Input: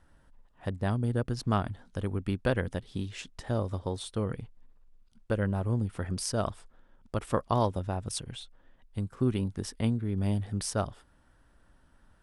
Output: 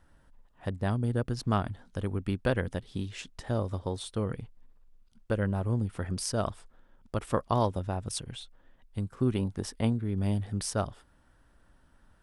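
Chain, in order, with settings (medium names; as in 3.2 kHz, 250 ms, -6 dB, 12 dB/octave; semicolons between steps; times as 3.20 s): 9.34–9.93 s: dynamic bell 750 Hz, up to +6 dB, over -47 dBFS, Q 1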